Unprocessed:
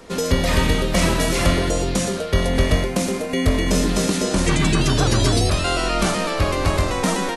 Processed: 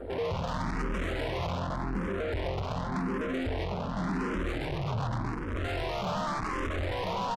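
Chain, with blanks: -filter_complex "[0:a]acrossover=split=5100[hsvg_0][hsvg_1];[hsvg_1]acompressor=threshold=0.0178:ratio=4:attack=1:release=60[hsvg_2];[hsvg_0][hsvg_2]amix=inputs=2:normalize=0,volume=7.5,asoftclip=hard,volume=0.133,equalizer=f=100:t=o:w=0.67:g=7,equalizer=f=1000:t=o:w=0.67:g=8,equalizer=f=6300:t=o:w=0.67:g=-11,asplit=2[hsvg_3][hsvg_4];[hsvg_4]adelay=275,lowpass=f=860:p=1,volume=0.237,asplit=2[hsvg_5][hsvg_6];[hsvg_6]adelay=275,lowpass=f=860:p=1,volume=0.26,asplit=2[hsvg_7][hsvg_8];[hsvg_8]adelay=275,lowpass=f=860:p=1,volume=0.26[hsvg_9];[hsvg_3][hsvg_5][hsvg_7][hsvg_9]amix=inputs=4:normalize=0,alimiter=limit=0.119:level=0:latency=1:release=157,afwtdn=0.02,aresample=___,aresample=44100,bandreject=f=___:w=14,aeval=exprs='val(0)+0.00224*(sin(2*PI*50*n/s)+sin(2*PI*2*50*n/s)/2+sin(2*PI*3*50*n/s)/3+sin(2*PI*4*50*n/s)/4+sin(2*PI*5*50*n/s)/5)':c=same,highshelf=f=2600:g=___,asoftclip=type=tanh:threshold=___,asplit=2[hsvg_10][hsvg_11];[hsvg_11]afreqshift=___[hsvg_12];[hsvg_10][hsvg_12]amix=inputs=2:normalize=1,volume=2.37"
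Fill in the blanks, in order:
32000, 2500, -6.5, 0.0178, 0.88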